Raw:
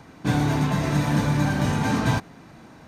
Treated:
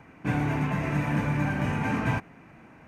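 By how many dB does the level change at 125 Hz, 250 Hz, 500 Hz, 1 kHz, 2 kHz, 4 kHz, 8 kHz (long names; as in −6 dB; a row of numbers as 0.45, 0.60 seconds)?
−5.0, −5.0, −5.0, −4.5, −2.0, −11.0, −13.5 decibels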